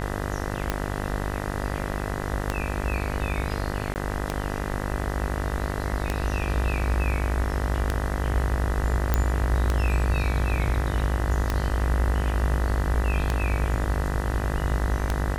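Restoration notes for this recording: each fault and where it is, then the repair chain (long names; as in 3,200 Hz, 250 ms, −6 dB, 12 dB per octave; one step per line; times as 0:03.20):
mains buzz 50 Hz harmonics 40 −30 dBFS
scratch tick 33 1/3 rpm −10 dBFS
0:03.94–0:03.96: drop-out 19 ms
0:09.14: click −8 dBFS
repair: click removal
hum removal 50 Hz, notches 40
repair the gap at 0:03.94, 19 ms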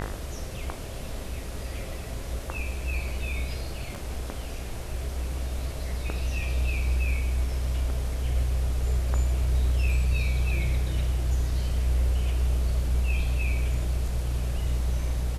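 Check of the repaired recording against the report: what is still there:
none of them is left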